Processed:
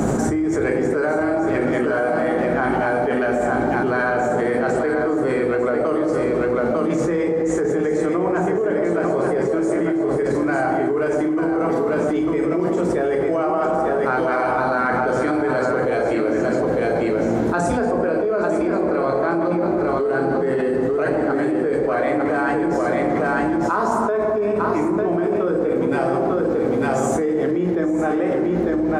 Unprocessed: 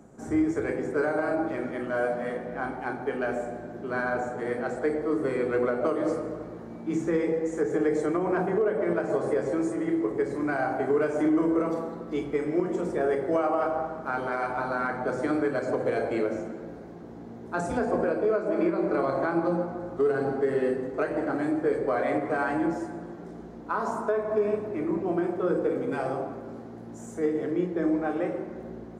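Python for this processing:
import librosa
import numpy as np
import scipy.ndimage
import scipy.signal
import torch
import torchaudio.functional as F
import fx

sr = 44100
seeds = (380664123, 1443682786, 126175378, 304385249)

y = x + 10.0 ** (-6.0 / 20.0) * np.pad(x, (int(899 * sr / 1000.0), 0))[:len(x)]
y = fx.env_flatten(y, sr, amount_pct=100)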